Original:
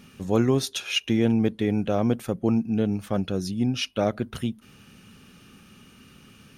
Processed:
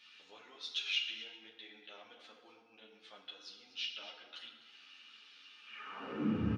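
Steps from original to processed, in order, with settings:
high-shelf EQ 2,100 Hz −7.5 dB
downward compressor 3 to 1, threshold −38 dBFS, peak gain reduction 16 dB
high-pass filter sweep 3,800 Hz → 64 Hz, 0:05.61–0:06.56
head-to-tape spacing loss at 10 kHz 40 dB
single-tap delay 250 ms −15 dB
feedback delay network reverb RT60 1.5 s, low-frequency decay 1×, high-frequency decay 0.6×, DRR 1 dB
string-ensemble chorus
level +18 dB

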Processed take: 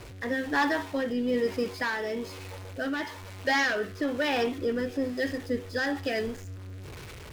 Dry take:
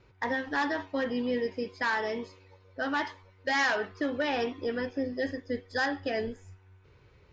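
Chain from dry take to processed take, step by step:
converter with a step at zero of −40 dBFS
rotating-speaker cabinet horn 1.1 Hz
level +3.5 dB

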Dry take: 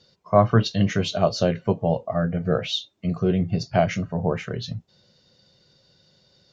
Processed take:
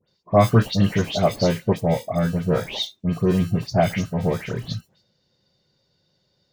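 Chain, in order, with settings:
noise gate −50 dBFS, range −9 dB
in parallel at −10 dB: decimation without filtering 31×
on the sum: all-pass dispersion highs, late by 89 ms, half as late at 2,300 Hz

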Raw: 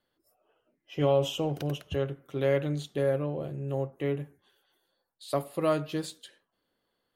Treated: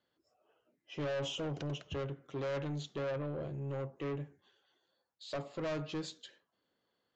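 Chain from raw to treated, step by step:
high-pass filter 69 Hz
soft clipping −31 dBFS, distortion −6 dB
downsampling to 16,000 Hz
level −2.5 dB

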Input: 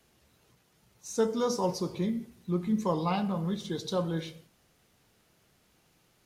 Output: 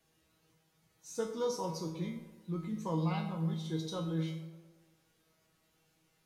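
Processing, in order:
tuned comb filter 160 Hz, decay 0.42 s, harmonics all, mix 90%
on a send: tape delay 114 ms, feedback 66%, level −13 dB, low-pass 2,500 Hz
on the sum: level +5.5 dB

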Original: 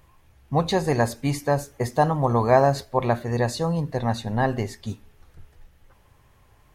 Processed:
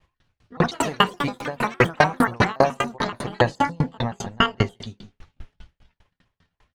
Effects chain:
pitch shifter gated in a rhythm +9.5 semitones, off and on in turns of 142 ms
low-pass filter 3,600 Hz 12 dB per octave
hum removal 68.21 Hz, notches 17
downward expander −49 dBFS
high-shelf EQ 2,800 Hz +11.5 dB
single-tap delay 168 ms −18.5 dB
delay with pitch and tempo change per echo 231 ms, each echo +6 semitones, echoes 2, each echo −6 dB
boost into a limiter +10.5 dB
tremolo with a ramp in dB decaying 5 Hz, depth 37 dB

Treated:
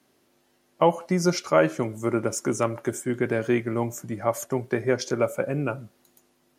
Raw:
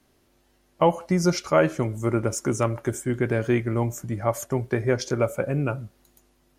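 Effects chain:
high-pass filter 160 Hz 12 dB per octave

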